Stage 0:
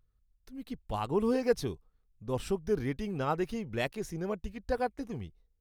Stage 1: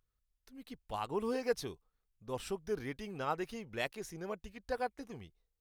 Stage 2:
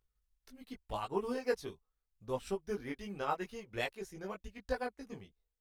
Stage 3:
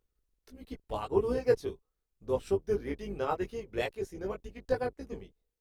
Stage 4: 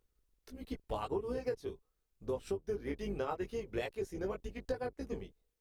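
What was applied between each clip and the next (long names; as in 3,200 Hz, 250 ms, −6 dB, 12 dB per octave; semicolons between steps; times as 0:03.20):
low-shelf EQ 380 Hz −10 dB; level −2 dB
transient designer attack +4 dB, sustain −6 dB; multi-voice chorus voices 6, 0.75 Hz, delay 18 ms, depth 2.8 ms; level +1.5 dB
sub-octave generator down 2 octaves, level 0 dB; parametric band 420 Hz +9 dB 1.1 octaves
downward compressor 10 to 1, threshold −35 dBFS, peak gain reduction 16 dB; level +2 dB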